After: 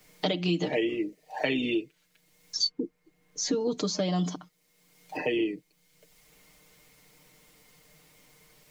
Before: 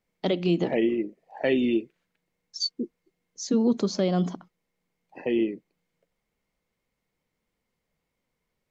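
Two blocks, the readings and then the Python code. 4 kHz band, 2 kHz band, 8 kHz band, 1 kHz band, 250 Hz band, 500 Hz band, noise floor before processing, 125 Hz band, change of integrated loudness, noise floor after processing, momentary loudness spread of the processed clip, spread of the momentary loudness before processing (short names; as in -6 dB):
+2.5 dB, +2.0 dB, n/a, +0.5 dB, -5.0 dB, -3.5 dB, -81 dBFS, -2.5 dB, -3.5 dB, -70 dBFS, 11 LU, 14 LU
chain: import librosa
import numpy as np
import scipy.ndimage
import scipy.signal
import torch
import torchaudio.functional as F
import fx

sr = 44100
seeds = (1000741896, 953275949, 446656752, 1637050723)

y = fx.high_shelf(x, sr, hz=2900.0, db=10.0)
y = y + 0.76 * np.pad(y, (int(6.6 * sr / 1000.0), 0))[:len(y)]
y = fx.band_squash(y, sr, depth_pct=70)
y = F.gain(torch.from_numpy(y), -4.5).numpy()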